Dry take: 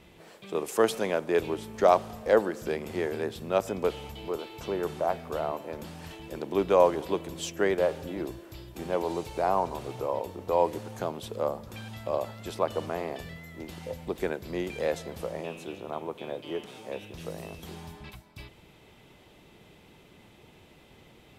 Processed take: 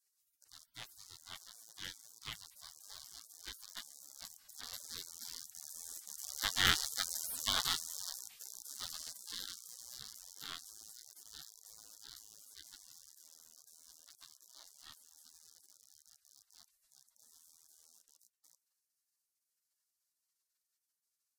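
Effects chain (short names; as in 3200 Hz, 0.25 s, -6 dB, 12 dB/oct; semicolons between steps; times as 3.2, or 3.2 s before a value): rattling part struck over -46 dBFS, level -16 dBFS; Doppler pass-by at 7.13, 7 m/s, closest 5 m; spectral gate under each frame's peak -30 dB weak; gain +13 dB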